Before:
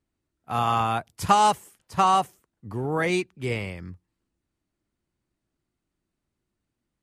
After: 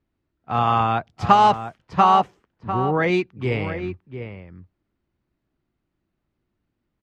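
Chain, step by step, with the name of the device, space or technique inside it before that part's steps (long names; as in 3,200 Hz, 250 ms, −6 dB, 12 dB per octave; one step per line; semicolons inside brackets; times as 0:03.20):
shout across a valley (high-frequency loss of the air 200 metres; slap from a distant wall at 120 metres, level −9 dB)
level +5 dB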